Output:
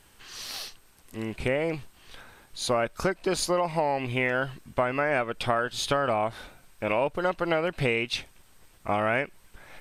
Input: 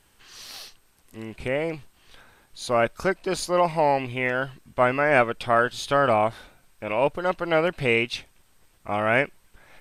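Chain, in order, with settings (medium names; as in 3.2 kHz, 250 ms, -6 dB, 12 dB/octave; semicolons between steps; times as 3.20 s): compression 12:1, threshold -25 dBFS, peak gain reduction 12.5 dB; trim +3.5 dB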